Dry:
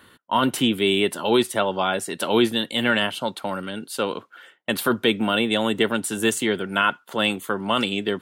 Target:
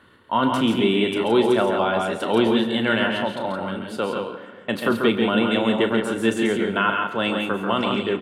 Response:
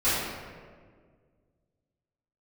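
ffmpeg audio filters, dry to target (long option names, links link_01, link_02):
-filter_complex "[0:a]aemphasis=mode=reproduction:type=75kf,aecho=1:1:34.99|137|169.1:0.282|0.501|0.501,asplit=2[link_01][link_02];[1:a]atrim=start_sample=2205,adelay=85[link_03];[link_02][link_03]afir=irnorm=-1:irlink=0,volume=-26.5dB[link_04];[link_01][link_04]amix=inputs=2:normalize=0"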